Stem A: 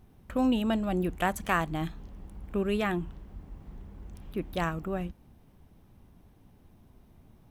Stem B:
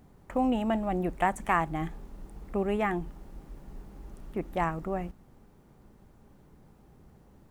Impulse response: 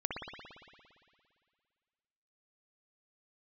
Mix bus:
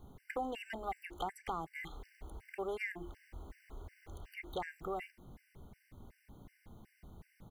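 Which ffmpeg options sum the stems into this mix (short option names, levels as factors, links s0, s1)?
-filter_complex "[0:a]asoftclip=type=tanh:threshold=0.0531,volume=1.26[s0];[1:a]equalizer=f=2100:w=6.4:g=14,adelay=2.8,volume=0.75,asplit=2[s1][s2];[s2]apad=whole_len=330988[s3];[s0][s3]sidechaincompress=threshold=0.0251:ratio=8:attack=7.6:release=286[s4];[s4][s1]amix=inputs=2:normalize=0,bandreject=f=50:t=h:w=6,bandreject=f=100:t=h:w=6,bandreject=f=150:t=h:w=6,bandreject=f=200:t=h:w=6,bandreject=f=250:t=h:w=6,bandreject=f=300:t=h:w=6,bandreject=f=350:t=h:w=6,acrossover=split=550|6400[s5][s6][s7];[s5]acompressor=threshold=0.00631:ratio=4[s8];[s6]acompressor=threshold=0.0141:ratio=4[s9];[s7]acompressor=threshold=0.001:ratio=4[s10];[s8][s9][s10]amix=inputs=3:normalize=0,afftfilt=real='re*gt(sin(2*PI*2.7*pts/sr)*(1-2*mod(floor(b*sr/1024/1500),2)),0)':imag='im*gt(sin(2*PI*2.7*pts/sr)*(1-2*mod(floor(b*sr/1024/1500),2)),0)':win_size=1024:overlap=0.75"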